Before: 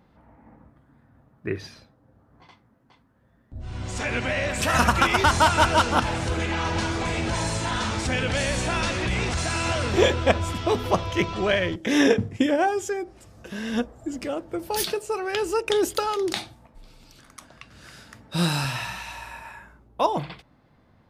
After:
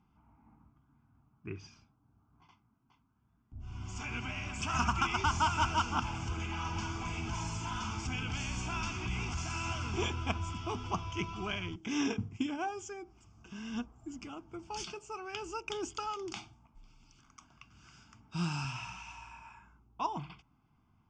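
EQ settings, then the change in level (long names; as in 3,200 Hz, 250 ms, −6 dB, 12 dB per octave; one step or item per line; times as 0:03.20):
Butterworth low-pass 7,500 Hz 36 dB per octave
phaser with its sweep stopped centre 2,700 Hz, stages 8
−9.0 dB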